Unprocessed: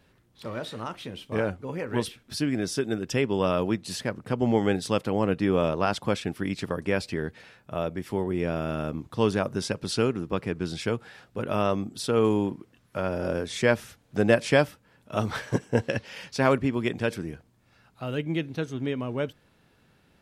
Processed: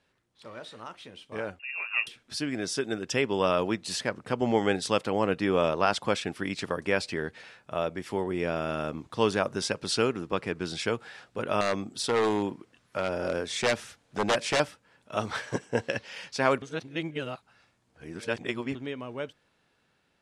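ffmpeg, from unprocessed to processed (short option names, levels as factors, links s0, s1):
-filter_complex "[0:a]asettb=1/sr,asplit=3[s0][s1][s2];[s0]atrim=end=1.594[s3];[s1]atrim=start=1.59:end=2.07,asetpts=PTS-STARTPTS,afade=t=in:d=0.004:c=qsin,afade=t=out:st=0.476:d=0.004:c=qsin,lowpass=f=2500:t=q:w=0.5098,lowpass=f=2500:t=q:w=0.6013,lowpass=f=2500:t=q:w=0.9,lowpass=f=2500:t=q:w=2.563,afreqshift=-2900[s4];[s2]atrim=start=2.066[s5];[s3][s4]acrossfade=d=0.004:c1=hsin:c2=qsin[s6];[s6][s5]acrossfade=d=0.004:c1=qsin:c2=hsin,asettb=1/sr,asplit=3[s7][s8][s9];[s7]atrim=end=11.614[s10];[s8]atrim=start=11.61:end=14.6,asetpts=PTS-STARTPTS,afade=t=in:d=0.004:c=qsin,afade=t=out:st=2.986:d=0.004:c=qsin,aeval=exprs='0.133*(abs(mod(val(0)/0.133+3,4)-2)-1)':c=same[s11];[s9]atrim=start=14.596[s12];[s10][s11]acrossfade=d=0.004:c1=hsin:c2=qsin[s13];[s13][s12]acrossfade=d=0.004:c1=qsin:c2=hsin,asplit=3[s14][s15][s16];[s14]atrim=end=16.622[s17];[s15]atrim=start=16.618:end=18.752,asetpts=PTS-STARTPTS,areverse[s18];[s16]atrim=start=18.748[s19];[s17][s18]acrossfade=d=0.004:c1=hsin:c2=hsin[s20];[s20][s19]acrossfade=d=0.004:c1=hsin:c2=hsin,lowpass=f=10000:w=0.5412,lowpass=f=10000:w=1.3066,lowshelf=f=310:g=-10.5,dynaudnorm=f=670:g=7:m=3.35,volume=0.501"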